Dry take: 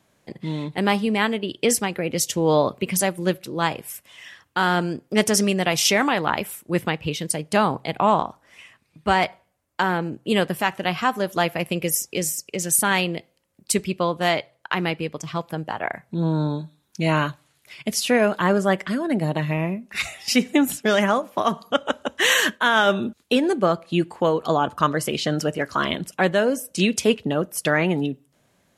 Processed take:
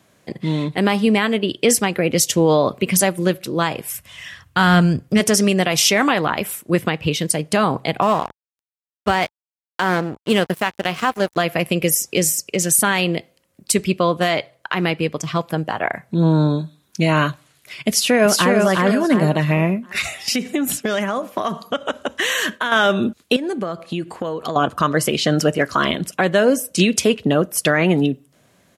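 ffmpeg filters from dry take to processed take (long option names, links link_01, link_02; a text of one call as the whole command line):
ffmpeg -i in.wav -filter_complex "[0:a]asplit=3[link_01][link_02][link_03];[link_01]afade=type=out:start_time=3.91:duration=0.02[link_04];[link_02]asubboost=boost=10:cutoff=110,afade=type=in:start_time=3.91:duration=0.02,afade=type=out:start_time=5.19:duration=0.02[link_05];[link_03]afade=type=in:start_time=5.19:duration=0.02[link_06];[link_04][link_05][link_06]amix=inputs=3:normalize=0,asplit=3[link_07][link_08][link_09];[link_07]afade=type=out:start_time=8.01:duration=0.02[link_10];[link_08]aeval=exprs='sgn(val(0))*max(abs(val(0))-0.0211,0)':channel_layout=same,afade=type=in:start_time=8.01:duration=0.02,afade=type=out:start_time=11.36:duration=0.02[link_11];[link_09]afade=type=in:start_time=11.36:duration=0.02[link_12];[link_10][link_11][link_12]amix=inputs=3:normalize=0,asplit=2[link_13][link_14];[link_14]afade=type=in:start_time=17.89:duration=0.01,afade=type=out:start_time=18.55:duration=0.01,aecho=0:1:360|720|1080|1440:0.841395|0.252419|0.0757256|0.0227177[link_15];[link_13][link_15]amix=inputs=2:normalize=0,asettb=1/sr,asplit=3[link_16][link_17][link_18];[link_16]atrim=end=19.844[link_19];[link_17]atrim=start=19.84:end=22.72,asetpts=PTS-STARTPTS,afade=type=in:duration=0.004:curve=qsin,afade=type=out:start_time=2.876:duration=0.004:curve=qsin,acompressor=threshold=-23dB:ratio=10:attack=3.2:release=140:knee=1:detection=peak[link_20];[link_18]atrim=start=22.716[link_21];[link_19][link_20]acrossfade=duration=0.004:curve1=hsin:curve2=qsin[link_22];[link_22][link_21]acrossfade=duration=0.004:curve1=qsin:curve2=hsin,asettb=1/sr,asplit=3[link_23][link_24][link_25];[link_23]atrim=end=23.364[link_26];[link_24]atrim=start=23.36:end=24.56,asetpts=PTS-STARTPTS,afade=type=in:duration=0.004:curve=qsin,afade=type=out:start_time=1.196:duration=0.004:curve=qsin,acompressor=threshold=-28dB:ratio=5:attack=3.2:release=140:knee=1:detection=peak[link_27];[link_25]atrim=start=24.556[link_28];[link_26][link_27]acrossfade=duration=0.004:curve1=hsin:curve2=qsin[link_29];[link_29][link_28]acrossfade=duration=0.004:curve1=qsin:curve2=hsin,highpass=56,bandreject=frequency=870:width=12,alimiter=limit=-12dB:level=0:latency=1:release=133,volume=7dB" out.wav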